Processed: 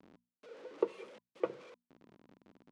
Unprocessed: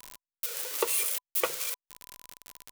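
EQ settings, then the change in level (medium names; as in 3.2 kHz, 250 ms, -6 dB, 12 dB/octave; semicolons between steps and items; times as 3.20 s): band-pass filter 240 Hz, Q 1.9; distance through air 120 m; hum notches 60/120/180/240 Hz; +8.0 dB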